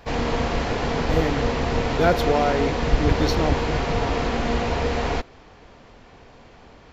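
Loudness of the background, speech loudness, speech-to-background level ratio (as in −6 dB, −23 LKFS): −24.0 LKFS, −25.5 LKFS, −1.5 dB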